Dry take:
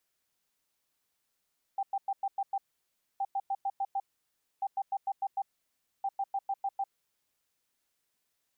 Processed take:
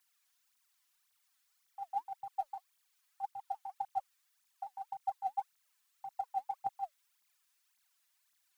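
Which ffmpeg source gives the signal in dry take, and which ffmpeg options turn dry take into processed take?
-f lavfi -i "aevalsrc='0.0398*sin(2*PI*787*t)*clip(min(mod(mod(t,1.42),0.15),0.05-mod(mod(t,1.42),0.15))/0.005,0,1)*lt(mod(t,1.42),0.9)':d=5.68:s=44100"
-af "highpass=f=940:w=0.5412,highpass=f=940:w=1.3066,aphaser=in_gain=1:out_gain=1:delay=4.1:decay=0.73:speed=1.8:type=triangular"

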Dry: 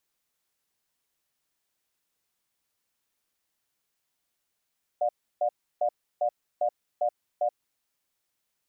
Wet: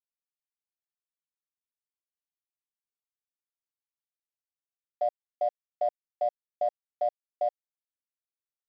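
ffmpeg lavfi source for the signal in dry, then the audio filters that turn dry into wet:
-f lavfi -i "aevalsrc='0.0562*(sin(2*PI*598*t)+sin(2*PI*717*t))*clip(min(mod(t,0.4),0.08-mod(t,0.4))/0.005,0,1)':d=2.62:s=44100"
-af "aresample=11025,aeval=exprs='sgn(val(0))*max(abs(val(0))-0.00224,0)':c=same,aresample=44100"

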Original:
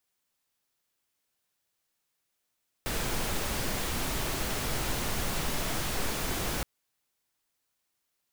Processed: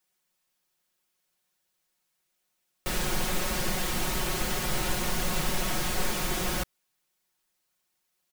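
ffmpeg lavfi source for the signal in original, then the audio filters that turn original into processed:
-f lavfi -i "anoisesrc=c=pink:a=0.145:d=3.77:r=44100:seed=1"
-af "aecho=1:1:5.5:0.84"

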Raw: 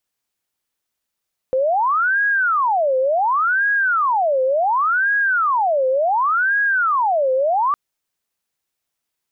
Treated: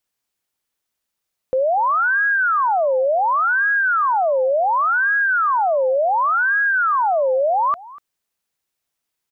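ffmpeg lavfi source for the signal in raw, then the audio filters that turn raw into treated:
-f lavfi -i "aevalsrc='0.188*sin(2*PI*(1083.5*t-566.5/(2*PI*0.69)*sin(2*PI*0.69*t)))':d=6.21:s=44100"
-af "aecho=1:1:243:0.0944"

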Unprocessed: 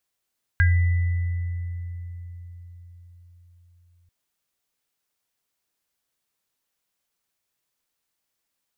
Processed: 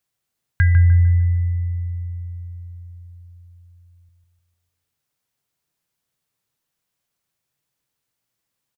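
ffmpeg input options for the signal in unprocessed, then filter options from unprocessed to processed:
-f lavfi -i "aevalsrc='0.2*pow(10,-3*t/4.79)*sin(2*PI*87.4*t)+0.15*pow(10,-3*t/0.24)*sin(2*PI*1620*t)+0.0376*pow(10,-3*t/2.6)*sin(2*PI*1990*t)':d=3.49:s=44100"
-filter_complex "[0:a]equalizer=f=130:t=o:w=0.92:g=10.5,asplit=2[s0][s1];[s1]adelay=150,lowpass=f=1500:p=1,volume=0.562,asplit=2[s2][s3];[s3]adelay=150,lowpass=f=1500:p=1,volume=0.49,asplit=2[s4][s5];[s5]adelay=150,lowpass=f=1500:p=1,volume=0.49,asplit=2[s6][s7];[s7]adelay=150,lowpass=f=1500:p=1,volume=0.49,asplit=2[s8][s9];[s9]adelay=150,lowpass=f=1500:p=1,volume=0.49,asplit=2[s10][s11];[s11]adelay=150,lowpass=f=1500:p=1,volume=0.49[s12];[s0][s2][s4][s6][s8][s10][s12]amix=inputs=7:normalize=0"

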